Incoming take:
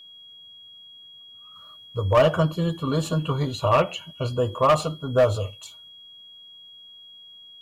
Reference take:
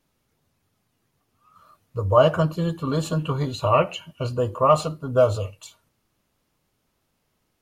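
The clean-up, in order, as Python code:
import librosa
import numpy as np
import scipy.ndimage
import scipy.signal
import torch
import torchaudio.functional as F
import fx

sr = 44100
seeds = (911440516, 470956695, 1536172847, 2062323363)

y = fx.fix_declip(x, sr, threshold_db=-11.5)
y = fx.notch(y, sr, hz=3300.0, q=30.0)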